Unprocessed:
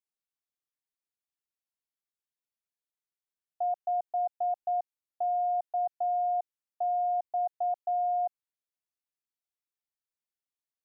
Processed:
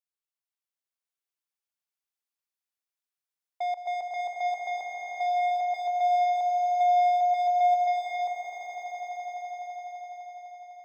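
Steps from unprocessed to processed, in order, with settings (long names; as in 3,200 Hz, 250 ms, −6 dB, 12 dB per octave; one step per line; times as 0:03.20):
high-pass filter 570 Hz 12 dB per octave
leveller curve on the samples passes 2
echo that builds up and dies away 84 ms, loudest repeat 8, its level −8 dB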